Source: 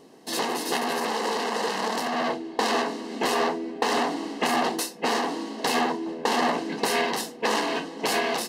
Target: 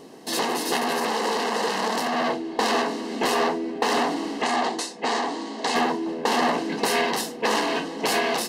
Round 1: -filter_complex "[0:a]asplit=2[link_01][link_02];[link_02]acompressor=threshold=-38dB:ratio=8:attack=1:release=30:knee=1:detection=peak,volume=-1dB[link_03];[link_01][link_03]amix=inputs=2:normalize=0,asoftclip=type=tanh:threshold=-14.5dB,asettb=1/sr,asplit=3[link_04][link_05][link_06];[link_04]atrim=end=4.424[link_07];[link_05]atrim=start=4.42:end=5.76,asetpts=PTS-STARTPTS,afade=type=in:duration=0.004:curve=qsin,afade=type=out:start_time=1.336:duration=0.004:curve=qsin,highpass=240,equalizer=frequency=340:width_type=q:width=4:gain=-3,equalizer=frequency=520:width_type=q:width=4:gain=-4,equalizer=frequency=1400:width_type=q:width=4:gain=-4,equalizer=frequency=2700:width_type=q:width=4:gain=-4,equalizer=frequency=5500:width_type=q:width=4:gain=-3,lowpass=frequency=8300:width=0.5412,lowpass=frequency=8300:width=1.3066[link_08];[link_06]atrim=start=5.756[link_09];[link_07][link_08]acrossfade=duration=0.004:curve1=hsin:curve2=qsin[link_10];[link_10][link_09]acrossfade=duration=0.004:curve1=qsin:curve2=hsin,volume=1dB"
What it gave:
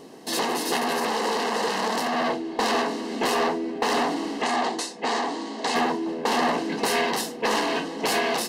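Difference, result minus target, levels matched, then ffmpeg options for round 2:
soft clipping: distortion +12 dB
-filter_complex "[0:a]asplit=2[link_01][link_02];[link_02]acompressor=threshold=-38dB:ratio=8:attack=1:release=30:knee=1:detection=peak,volume=-1dB[link_03];[link_01][link_03]amix=inputs=2:normalize=0,asoftclip=type=tanh:threshold=-7.5dB,asettb=1/sr,asplit=3[link_04][link_05][link_06];[link_04]atrim=end=4.424[link_07];[link_05]atrim=start=4.42:end=5.76,asetpts=PTS-STARTPTS,afade=type=in:duration=0.004:curve=qsin,afade=type=out:start_time=1.336:duration=0.004:curve=qsin,highpass=240,equalizer=frequency=340:width_type=q:width=4:gain=-3,equalizer=frequency=520:width_type=q:width=4:gain=-4,equalizer=frequency=1400:width_type=q:width=4:gain=-4,equalizer=frequency=2700:width_type=q:width=4:gain=-4,equalizer=frequency=5500:width_type=q:width=4:gain=-3,lowpass=frequency=8300:width=0.5412,lowpass=frequency=8300:width=1.3066[link_08];[link_06]atrim=start=5.756[link_09];[link_07][link_08]acrossfade=duration=0.004:curve1=hsin:curve2=qsin[link_10];[link_10][link_09]acrossfade=duration=0.004:curve1=qsin:curve2=hsin,volume=1dB"

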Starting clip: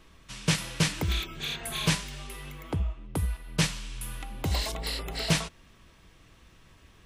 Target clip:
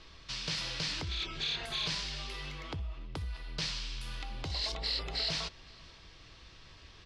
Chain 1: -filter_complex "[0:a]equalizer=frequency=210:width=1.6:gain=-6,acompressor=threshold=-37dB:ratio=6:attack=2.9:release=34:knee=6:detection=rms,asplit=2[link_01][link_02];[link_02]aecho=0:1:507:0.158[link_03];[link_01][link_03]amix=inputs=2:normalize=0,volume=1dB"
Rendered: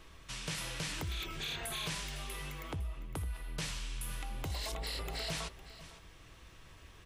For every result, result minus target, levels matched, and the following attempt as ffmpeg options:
echo-to-direct +10.5 dB; 4,000 Hz band −3.0 dB
-filter_complex "[0:a]equalizer=frequency=210:width=1.6:gain=-6,acompressor=threshold=-37dB:ratio=6:attack=2.9:release=34:knee=6:detection=rms,asplit=2[link_01][link_02];[link_02]aecho=0:1:507:0.0473[link_03];[link_01][link_03]amix=inputs=2:normalize=0,volume=1dB"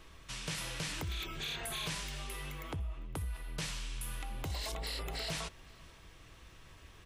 4,000 Hz band −3.0 dB
-filter_complex "[0:a]equalizer=frequency=210:width=1.6:gain=-6,acompressor=threshold=-37dB:ratio=6:attack=2.9:release=34:knee=6:detection=rms,lowpass=frequency=4700:width_type=q:width=3.2,asplit=2[link_01][link_02];[link_02]aecho=0:1:507:0.0473[link_03];[link_01][link_03]amix=inputs=2:normalize=0,volume=1dB"

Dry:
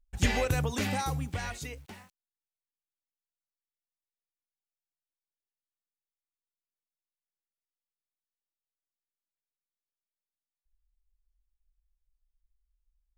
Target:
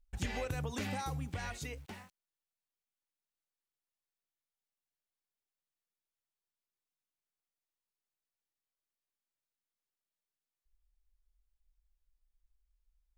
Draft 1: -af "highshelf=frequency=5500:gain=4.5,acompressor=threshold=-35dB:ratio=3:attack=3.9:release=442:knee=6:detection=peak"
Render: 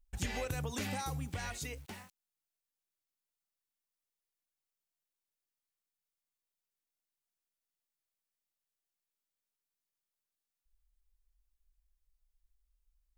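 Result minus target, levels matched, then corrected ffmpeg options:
8,000 Hz band +4.0 dB
-af "highshelf=frequency=5500:gain=-3.5,acompressor=threshold=-35dB:ratio=3:attack=3.9:release=442:knee=6:detection=peak"

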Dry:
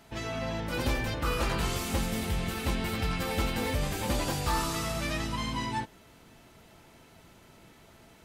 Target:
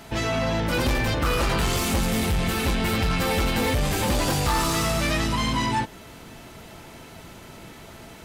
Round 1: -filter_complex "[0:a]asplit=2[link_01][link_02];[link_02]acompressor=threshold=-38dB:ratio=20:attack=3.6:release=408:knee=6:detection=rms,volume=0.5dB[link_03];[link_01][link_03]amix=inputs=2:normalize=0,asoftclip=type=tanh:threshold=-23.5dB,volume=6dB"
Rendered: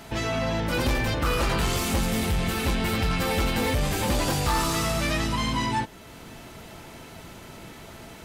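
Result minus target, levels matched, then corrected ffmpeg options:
downward compressor: peak gain reduction +10.5 dB
-filter_complex "[0:a]asplit=2[link_01][link_02];[link_02]acompressor=threshold=-27dB:ratio=20:attack=3.6:release=408:knee=6:detection=rms,volume=0.5dB[link_03];[link_01][link_03]amix=inputs=2:normalize=0,asoftclip=type=tanh:threshold=-23.5dB,volume=6dB"

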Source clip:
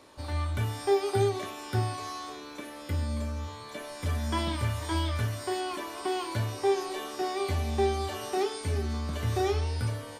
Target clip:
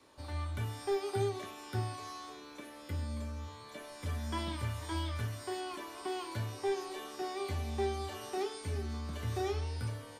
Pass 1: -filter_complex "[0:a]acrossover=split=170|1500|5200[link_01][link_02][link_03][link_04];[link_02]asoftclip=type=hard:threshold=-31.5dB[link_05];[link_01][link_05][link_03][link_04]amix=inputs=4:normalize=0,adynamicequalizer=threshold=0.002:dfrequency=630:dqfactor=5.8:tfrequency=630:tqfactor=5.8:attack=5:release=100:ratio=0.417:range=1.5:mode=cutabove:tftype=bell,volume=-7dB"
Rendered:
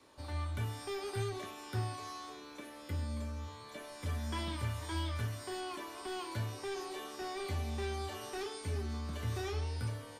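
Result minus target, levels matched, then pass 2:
hard clipping: distortion +16 dB
-filter_complex "[0:a]acrossover=split=170|1500|5200[link_01][link_02][link_03][link_04];[link_02]asoftclip=type=hard:threshold=-20.5dB[link_05];[link_01][link_05][link_03][link_04]amix=inputs=4:normalize=0,adynamicequalizer=threshold=0.002:dfrequency=630:dqfactor=5.8:tfrequency=630:tqfactor=5.8:attack=5:release=100:ratio=0.417:range=1.5:mode=cutabove:tftype=bell,volume=-7dB"

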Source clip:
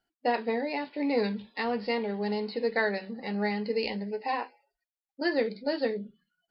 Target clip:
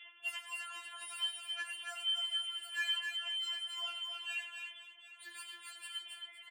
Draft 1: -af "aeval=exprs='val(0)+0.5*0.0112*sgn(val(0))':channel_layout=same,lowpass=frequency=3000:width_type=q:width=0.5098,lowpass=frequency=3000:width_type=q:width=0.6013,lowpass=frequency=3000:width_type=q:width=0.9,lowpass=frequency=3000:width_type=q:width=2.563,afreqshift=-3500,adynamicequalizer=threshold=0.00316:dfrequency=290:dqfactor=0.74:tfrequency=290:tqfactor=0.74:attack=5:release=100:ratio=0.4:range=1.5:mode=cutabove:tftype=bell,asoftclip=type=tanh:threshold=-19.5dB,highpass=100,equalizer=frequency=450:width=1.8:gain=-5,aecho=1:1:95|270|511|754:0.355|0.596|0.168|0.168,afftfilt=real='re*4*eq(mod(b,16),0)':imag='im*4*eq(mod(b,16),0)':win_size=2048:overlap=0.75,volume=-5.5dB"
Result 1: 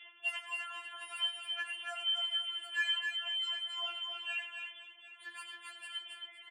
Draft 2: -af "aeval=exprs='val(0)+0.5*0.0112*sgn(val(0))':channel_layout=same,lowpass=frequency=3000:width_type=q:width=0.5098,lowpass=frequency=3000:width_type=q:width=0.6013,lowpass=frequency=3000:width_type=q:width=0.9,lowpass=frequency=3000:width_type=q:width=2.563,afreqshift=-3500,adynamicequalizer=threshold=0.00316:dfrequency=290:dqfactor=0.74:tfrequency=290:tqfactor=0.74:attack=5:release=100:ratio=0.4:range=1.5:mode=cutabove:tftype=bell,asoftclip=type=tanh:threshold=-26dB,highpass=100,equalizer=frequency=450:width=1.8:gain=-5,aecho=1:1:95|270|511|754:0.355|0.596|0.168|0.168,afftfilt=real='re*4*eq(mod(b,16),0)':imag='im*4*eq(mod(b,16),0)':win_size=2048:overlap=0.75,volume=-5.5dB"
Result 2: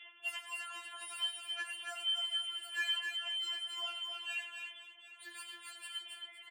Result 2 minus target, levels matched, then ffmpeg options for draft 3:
500 Hz band +3.5 dB
-af "aeval=exprs='val(0)+0.5*0.0112*sgn(val(0))':channel_layout=same,lowpass=frequency=3000:width_type=q:width=0.5098,lowpass=frequency=3000:width_type=q:width=0.6013,lowpass=frequency=3000:width_type=q:width=0.9,lowpass=frequency=3000:width_type=q:width=2.563,afreqshift=-3500,adynamicequalizer=threshold=0.00316:dfrequency=290:dqfactor=0.74:tfrequency=290:tqfactor=0.74:attack=5:release=100:ratio=0.4:range=1.5:mode=cutabove:tftype=bell,asoftclip=type=tanh:threshold=-26dB,highpass=100,equalizer=frequency=450:width=1.8:gain=-15.5,aecho=1:1:95|270|511|754:0.355|0.596|0.168|0.168,afftfilt=real='re*4*eq(mod(b,16),0)':imag='im*4*eq(mod(b,16),0)':win_size=2048:overlap=0.75,volume=-5.5dB"

